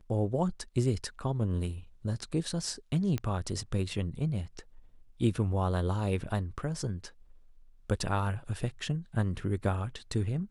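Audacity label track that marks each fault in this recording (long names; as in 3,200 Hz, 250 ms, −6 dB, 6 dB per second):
3.180000	3.180000	click −19 dBFS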